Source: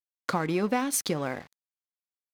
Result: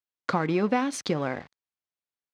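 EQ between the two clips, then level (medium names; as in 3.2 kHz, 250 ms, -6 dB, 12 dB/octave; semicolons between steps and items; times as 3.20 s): high-pass 43 Hz; distance through air 110 m; +2.5 dB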